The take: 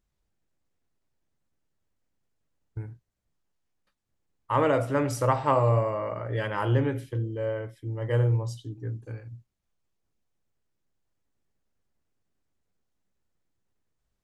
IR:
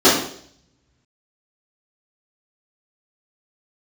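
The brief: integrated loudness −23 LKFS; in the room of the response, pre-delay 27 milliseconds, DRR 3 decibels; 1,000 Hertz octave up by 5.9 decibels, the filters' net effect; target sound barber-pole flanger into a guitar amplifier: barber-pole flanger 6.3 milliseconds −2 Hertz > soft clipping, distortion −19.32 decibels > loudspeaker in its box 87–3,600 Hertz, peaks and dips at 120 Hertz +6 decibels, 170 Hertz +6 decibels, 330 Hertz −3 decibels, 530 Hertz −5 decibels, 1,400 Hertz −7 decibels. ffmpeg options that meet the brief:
-filter_complex "[0:a]equalizer=frequency=1000:width_type=o:gain=8.5,asplit=2[link_01][link_02];[1:a]atrim=start_sample=2205,adelay=27[link_03];[link_02][link_03]afir=irnorm=-1:irlink=0,volume=-29.5dB[link_04];[link_01][link_04]amix=inputs=2:normalize=0,asplit=2[link_05][link_06];[link_06]adelay=6.3,afreqshift=-2[link_07];[link_05][link_07]amix=inputs=2:normalize=1,asoftclip=threshold=-11dB,highpass=87,equalizer=frequency=120:width_type=q:width=4:gain=6,equalizer=frequency=170:width_type=q:width=4:gain=6,equalizer=frequency=330:width_type=q:width=4:gain=-3,equalizer=frequency=530:width_type=q:width=4:gain=-5,equalizer=frequency=1400:width_type=q:width=4:gain=-7,lowpass=frequency=3600:width=0.5412,lowpass=frequency=3600:width=1.3066,volume=4dB"

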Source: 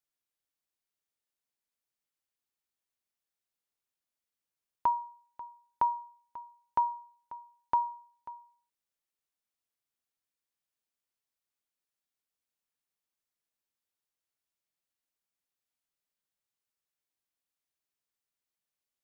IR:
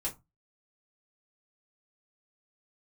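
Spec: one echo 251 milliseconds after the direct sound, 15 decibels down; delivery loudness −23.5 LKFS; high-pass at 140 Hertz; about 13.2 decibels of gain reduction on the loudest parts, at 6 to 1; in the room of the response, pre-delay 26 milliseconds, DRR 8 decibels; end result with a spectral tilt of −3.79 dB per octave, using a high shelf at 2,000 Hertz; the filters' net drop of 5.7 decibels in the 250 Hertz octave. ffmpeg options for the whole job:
-filter_complex "[0:a]highpass=140,equalizer=frequency=250:width_type=o:gain=-7.5,highshelf=frequency=2000:gain=8.5,acompressor=threshold=-36dB:ratio=6,aecho=1:1:251:0.178,asplit=2[link_01][link_02];[1:a]atrim=start_sample=2205,adelay=26[link_03];[link_02][link_03]afir=irnorm=-1:irlink=0,volume=-10dB[link_04];[link_01][link_04]amix=inputs=2:normalize=0,volume=19dB"

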